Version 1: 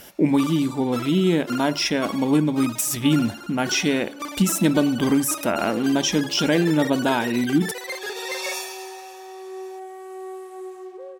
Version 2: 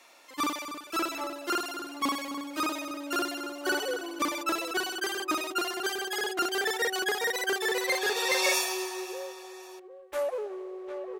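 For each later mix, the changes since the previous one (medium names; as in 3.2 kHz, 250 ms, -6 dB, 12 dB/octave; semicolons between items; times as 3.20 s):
speech: muted; first sound +3.0 dB; second sound: entry -1.85 s; reverb: off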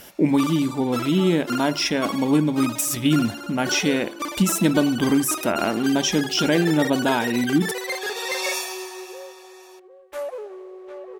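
speech: unmuted; reverb: on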